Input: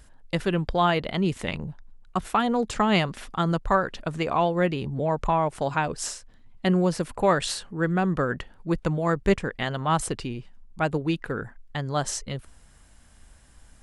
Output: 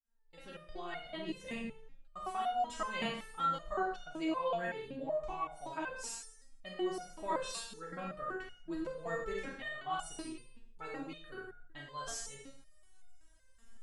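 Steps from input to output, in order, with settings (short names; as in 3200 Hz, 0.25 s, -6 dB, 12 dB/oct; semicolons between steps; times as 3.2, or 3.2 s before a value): opening faded in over 0.99 s; Schroeder reverb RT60 0.64 s, combs from 28 ms, DRR -0.5 dB; stepped resonator 5.3 Hz 230–720 Hz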